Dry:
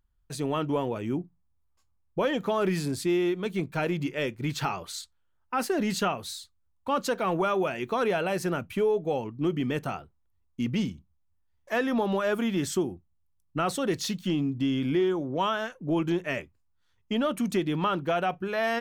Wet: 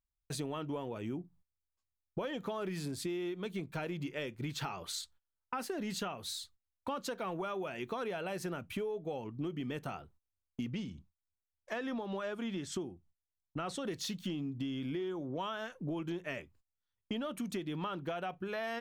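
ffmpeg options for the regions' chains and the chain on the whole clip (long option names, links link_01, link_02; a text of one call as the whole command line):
ffmpeg -i in.wav -filter_complex "[0:a]asettb=1/sr,asplit=3[link_01][link_02][link_03];[link_01]atrim=end=10.704[link_04];[link_02]atrim=start=10.7:end=13.85,asetpts=PTS-STARTPTS,afade=type=in:duration=0.004:curve=qsin,afade=type=out:start_time=3.146:duration=0.004:curve=qsin,lowpass=8400,tremolo=f=3.3:d=0.4[link_05];[link_03]atrim=start=13.846[link_06];[link_04][link_05]acrossfade=duration=0.004:curve1=hsin:curve2=qsin[link_07];[link_07][link_06]acrossfade=duration=0.004:curve1=qsin:curve2=hsin,equalizer=frequency=3500:width=3:gain=2.5,agate=range=-19dB:threshold=-56dB:ratio=16:detection=peak,acompressor=threshold=-36dB:ratio=6" out.wav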